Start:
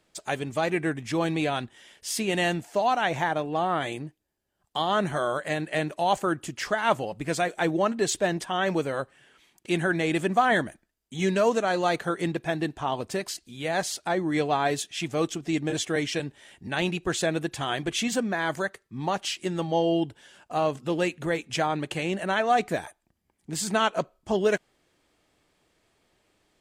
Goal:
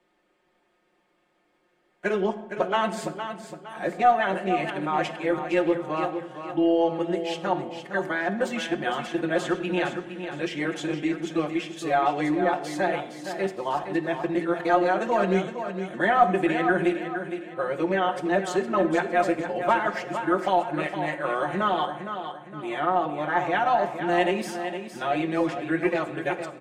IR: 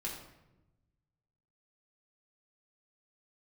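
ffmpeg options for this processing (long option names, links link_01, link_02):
-filter_complex "[0:a]areverse,acrossover=split=210 2700:gain=0.224 1 0.224[link_01][link_02][link_03];[link_01][link_02][link_03]amix=inputs=3:normalize=0,aecho=1:1:5.6:0.71,aecho=1:1:462|924|1386|1848:0.355|0.135|0.0512|0.0195,asplit=2[link_04][link_05];[1:a]atrim=start_sample=2205,asetrate=37926,aresample=44100[link_06];[link_05][link_06]afir=irnorm=-1:irlink=0,volume=-7.5dB[link_07];[link_04][link_07]amix=inputs=2:normalize=0,aeval=exprs='0.596*(cos(1*acos(clip(val(0)/0.596,-1,1)))-cos(1*PI/2))+0.0188*(cos(2*acos(clip(val(0)/0.596,-1,1)))-cos(2*PI/2))':channel_layout=same,volume=-2.5dB"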